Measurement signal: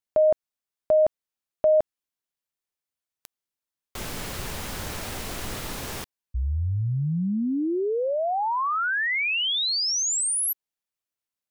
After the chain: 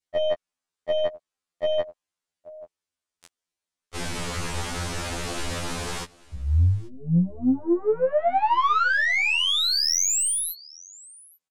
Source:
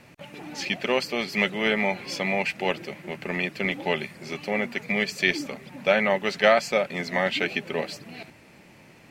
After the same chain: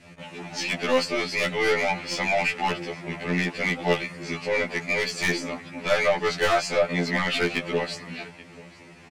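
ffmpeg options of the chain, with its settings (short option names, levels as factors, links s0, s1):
-af "lowpass=f=9800:w=0.5412,lowpass=f=9800:w=1.3066,adynamicequalizer=threshold=0.0112:dfrequency=1100:dqfactor=1.4:tfrequency=1100:tqfactor=1.4:attack=5:release=100:ratio=0.375:range=2:mode=boostabove:tftype=bell,aecho=1:1:833:0.0631,aeval=exprs='(tanh(11.2*val(0)+0.15)-tanh(0.15))/11.2':c=same,afftfilt=real='re*2*eq(mod(b,4),0)':imag='im*2*eq(mod(b,4),0)':win_size=2048:overlap=0.75,volume=2"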